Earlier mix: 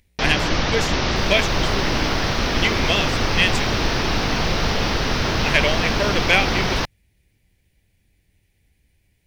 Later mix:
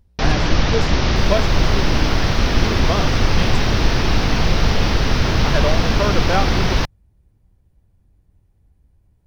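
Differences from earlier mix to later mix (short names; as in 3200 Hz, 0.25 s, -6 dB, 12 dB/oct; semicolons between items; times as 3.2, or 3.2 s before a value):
speech: add resonant high shelf 1600 Hz -10 dB, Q 3; master: add low shelf 170 Hz +8.5 dB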